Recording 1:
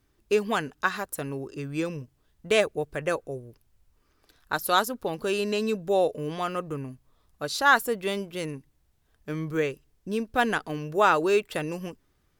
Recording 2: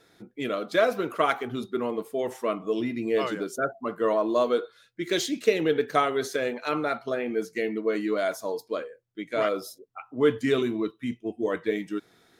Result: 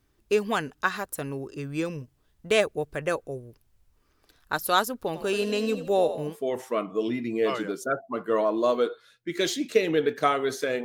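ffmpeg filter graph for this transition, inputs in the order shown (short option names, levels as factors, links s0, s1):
-filter_complex "[0:a]asplit=3[s0][s1][s2];[s0]afade=t=out:st=5.14:d=0.02[s3];[s1]asplit=5[s4][s5][s6][s7][s8];[s5]adelay=83,afreqshift=44,volume=0.282[s9];[s6]adelay=166,afreqshift=88,volume=0.116[s10];[s7]adelay=249,afreqshift=132,volume=0.0473[s11];[s8]adelay=332,afreqshift=176,volume=0.0195[s12];[s4][s9][s10][s11][s12]amix=inputs=5:normalize=0,afade=t=in:st=5.14:d=0.02,afade=t=out:st=6.36:d=0.02[s13];[s2]afade=t=in:st=6.36:d=0.02[s14];[s3][s13][s14]amix=inputs=3:normalize=0,apad=whole_dur=10.84,atrim=end=10.84,atrim=end=6.36,asetpts=PTS-STARTPTS[s15];[1:a]atrim=start=1.98:end=6.56,asetpts=PTS-STARTPTS[s16];[s15][s16]acrossfade=d=0.1:c1=tri:c2=tri"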